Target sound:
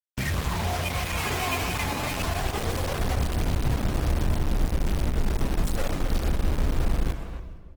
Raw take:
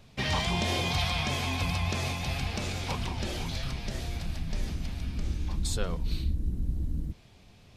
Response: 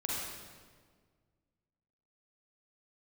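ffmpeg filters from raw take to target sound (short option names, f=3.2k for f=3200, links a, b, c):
-filter_complex "[0:a]asettb=1/sr,asplit=3[a][b][c];[a]atrim=end=5.094[d];[b]atrim=start=5.09:end=5.75,asetpts=PTS-STARTPTS,afade=t=in:d=0.004:c=qsin,afade=t=out:st=0.656:d=0.004:c=qsin,bandreject=f=50:t=h:w=6,bandreject=f=100:t=h:w=6,bandreject=f=150:t=h:w=6,bandreject=f=200:t=h:w=6[e];[c]atrim=start=5.746[f];[d][e]acrossfade=d=0.004:c1=hsin:c2=qsin[g];[g][f]acrossfade=d=0.004:c1=qsin:c2=hsin,aphaser=in_gain=1:out_gain=1:delay=3.6:decay=0.71:speed=0.26:type=triangular,bandreject=f=5k:w=15,asplit=2[h][i];[i]acompressor=threshold=-32dB:ratio=10,volume=2.5dB[j];[h][j]amix=inputs=2:normalize=0,alimiter=limit=-17.5dB:level=0:latency=1:release=132,afwtdn=0.0355,acrusher=bits=4:mix=0:aa=0.000001,asplit=2[k][l];[l]adelay=270,highpass=300,lowpass=3.4k,asoftclip=type=hard:threshold=-26.5dB,volume=-8dB[m];[k][m]amix=inputs=2:normalize=0,asplit=2[n][o];[1:a]atrim=start_sample=2205,adelay=59[p];[o][p]afir=irnorm=-1:irlink=0,volume=-13.5dB[q];[n][q]amix=inputs=2:normalize=0" -ar 48000 -c:a libopus -b:a 16k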